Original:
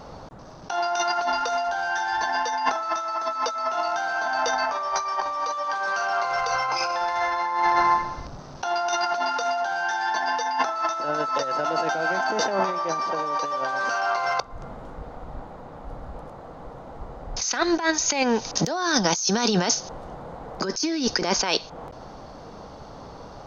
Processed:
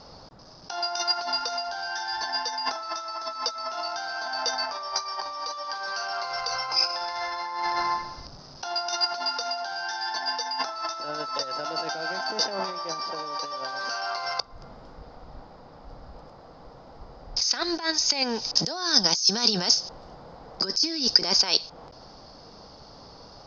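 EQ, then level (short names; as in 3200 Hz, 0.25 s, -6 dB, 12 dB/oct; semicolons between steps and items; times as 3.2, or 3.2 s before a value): synth low-pass 5000 Hz, resonance Q 7.7; -7.5 dB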